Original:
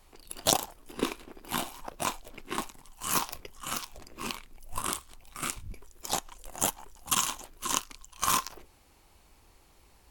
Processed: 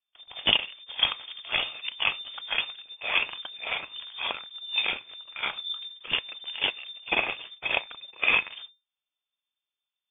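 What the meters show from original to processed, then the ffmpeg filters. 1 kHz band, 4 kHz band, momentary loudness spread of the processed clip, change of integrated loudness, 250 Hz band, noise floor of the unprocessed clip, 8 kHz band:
-3.5 dB, +9.5 dB, 13 LU, +4.0 dB, -7.5 dB, -61 dBFS, under -40 dB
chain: -af "agate=range=-36dB:threshold=-50dB:ratio=16:detection=peak,lowpass=f=3.1k:t=q:w=0.5098,lowpass=f=3.1k:t=q:w=0.6013,lowpass=f=3.1k:t=q:w=0.9,lowpass=f=3.1k:t=q:w=2.563,afreqshift=-3600,volume=6dB"

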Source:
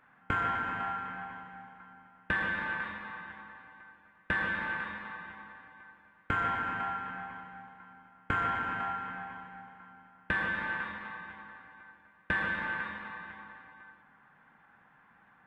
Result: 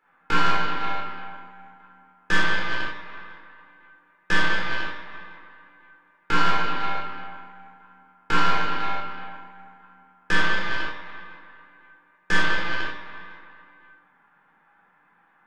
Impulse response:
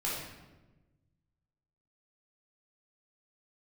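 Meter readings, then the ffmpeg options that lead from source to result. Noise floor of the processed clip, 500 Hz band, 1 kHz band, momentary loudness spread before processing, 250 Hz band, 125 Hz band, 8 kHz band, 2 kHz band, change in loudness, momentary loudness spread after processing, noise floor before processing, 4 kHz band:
-62 dBFS, +10.0 dB, +7.5 dB, 21 LU, +8.5 dB, +7.0 dB, n/a, +7.0 dB, +9.0 dB, 20 LU, -63 dBFS, +17.5 dB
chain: -filter_complex "[0:a]highpass=200,aeval=exprs='0.133*(cos(1*acos(clip(val(0)/0.133,-1,1)))-cos(1*PI/2))+0.0188*(cos(6*acos(clip(val(0)/0.133,-1,1)))-cos(6*PI/2))+0.0119*(cos(7*acos(clip(val(0)/0.133,-1,1)))-cos(7*PI/2))+0.00299*(cos(8*acos(clip(val(0)/0.133,-1,1)))-cos(8*PI/2))':c=same[a];[1:a]atrim=start_sample=2205,atrim=end_sample=4410[b];[a][b]afir=irnorm=-1:irlink=0,volume=5.5dB"

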